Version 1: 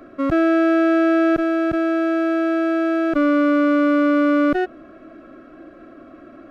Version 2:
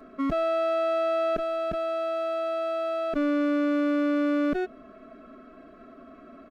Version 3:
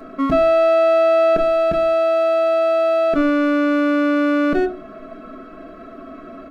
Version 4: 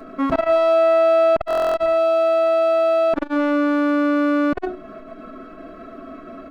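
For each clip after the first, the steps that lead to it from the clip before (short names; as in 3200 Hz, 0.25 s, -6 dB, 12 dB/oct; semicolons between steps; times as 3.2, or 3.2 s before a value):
dynamic EQ 1200 Hz, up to -4 dB, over -31 dBFS, Q 1.2; comb 4.6 ms, depth 86%; gain -7 dB
in parallel at -3 dB: limiter -27 dBFS, peak gain reduction 9 dB; on the sum: shoebox room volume 130 m³, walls furnished, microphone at 0.67 m; gain +5.5 dB
stuck buffer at 1.46, samples 1024, times 12; core saturation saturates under 530 Hz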